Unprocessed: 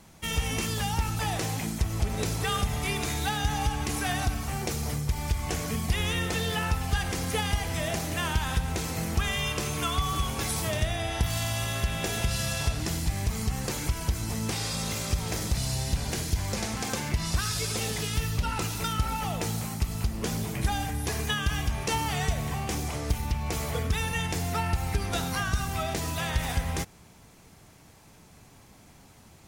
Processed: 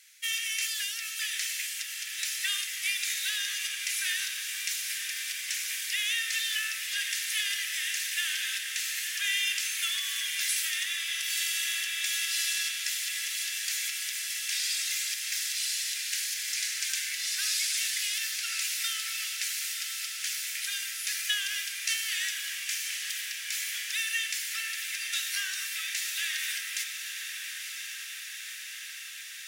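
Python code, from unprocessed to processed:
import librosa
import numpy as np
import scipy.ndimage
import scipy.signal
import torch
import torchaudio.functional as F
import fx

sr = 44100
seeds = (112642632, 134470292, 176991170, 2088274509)

p1 = scipy.signal.sosfilt(scipy.signal.butter(8, 1700.0, 'highpass', fs=sr, output='sos'), x)
p2 = p1 + fx.echo_diffused(p1, sr, ms=990, feedback_pct=76, wet_db=-7, dry=0)
y = p2 * librosa.db_to_amplitude(3.0)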